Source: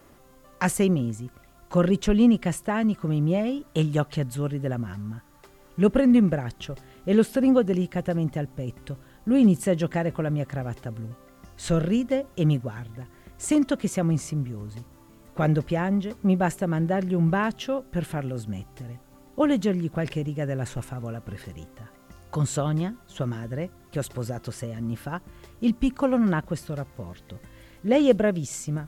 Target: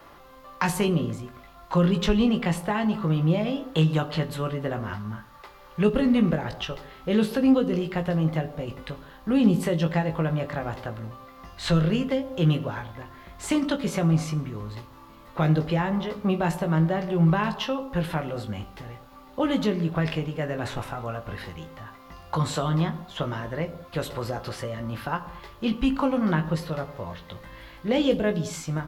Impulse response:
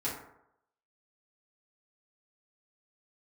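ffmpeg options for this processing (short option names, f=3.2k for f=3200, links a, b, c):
-filter_complex "[0:a]asplit=2[a][b];[b]adelay=19,volume=-6.5dB[c];[a][c]amix=inputs=2:normalize=0,asplit=2[d][e];[1:a]atrim=start_sample=2205,atrim=end_sample=6174,asetrate=26460,aresample=44100[f];[e][f]afir=irnorm=-1:irlink=0,volume=-17.5dB[g];[d][g]amix=inputs=2:normalize=0,acrossover=split=380|3000[h][i][j];[i]acompressor=threshold=-32dB:ratio=6[k];[h][k][j]amix=inputs=3:normalize=0,equalizer=f=125:t=o:w=1:g=-3,equalizer=f=250:t=o:w=1:g=-3,equalizer=f=1k:t=o:w=1:g=9,equalizer=f=2k:t=o:w=1:g=3,equalizer=f=4k:t=o:w=1:g=7,equalizer=f=8k:t=o:w=1:g=-9"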